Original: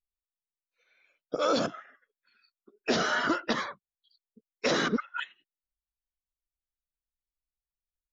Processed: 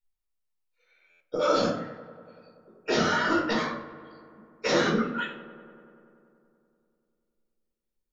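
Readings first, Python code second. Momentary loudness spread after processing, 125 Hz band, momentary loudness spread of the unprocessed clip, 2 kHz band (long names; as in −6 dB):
17 LU, +6.5 dB, 12 LU, +2.0 dB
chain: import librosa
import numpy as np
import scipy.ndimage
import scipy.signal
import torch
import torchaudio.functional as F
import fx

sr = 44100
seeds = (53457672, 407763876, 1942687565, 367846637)

p1 = x + fx.echo_filtered(x, sr, ms=96, feedback_pct=81, hz=3500.0, wet_db=-17, dry=0)
p2 = fx.room_shoebox(p1, sr, seeds[0], volume_m3=450.0, walls='furnished', distance_m=4.5)
p3 = fx.buffer_glitch(p2, sr, at_s=(1.1,), block=512, repeats=8)
y = p3 * librosa.db_to_amplitude(-4.5)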